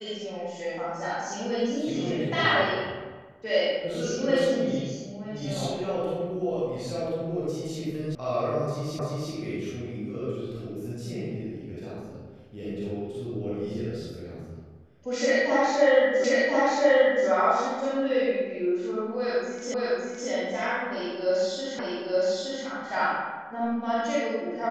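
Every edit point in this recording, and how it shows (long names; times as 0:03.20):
0:08.15: cut off before it has died away
0:08.99: the same again, the last 0.34 s
0:16.24: the same again, the last 1.03 s
0:19.74: the same again, the last 0.56 s
0:21.79: the same again, the last 0.87 s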